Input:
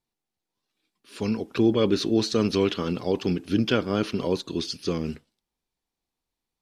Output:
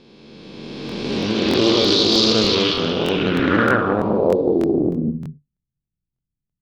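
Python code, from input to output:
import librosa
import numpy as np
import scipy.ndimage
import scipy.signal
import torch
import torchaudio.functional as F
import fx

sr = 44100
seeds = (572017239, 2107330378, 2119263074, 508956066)

y = fx.spec_swells(x, sr, rise_s=2.56)
y = fx.echo_multitap(y, sr, ms=(68, 186, 206), db=(-7.5, -8.0, -12.5))
y = fx.filter_sweep_lowpass(y, sr, from_hz=4300.0, to_hz=140.0, start_s=2.84, end_s=5.43, q=2.7)
y = fx.buffer_crackle(y, sr, first_s=0.87, period_s=0.31, block=1024, kind='repeat')
y = fx.doppler_dist(y, sr, depth_ms=0.3)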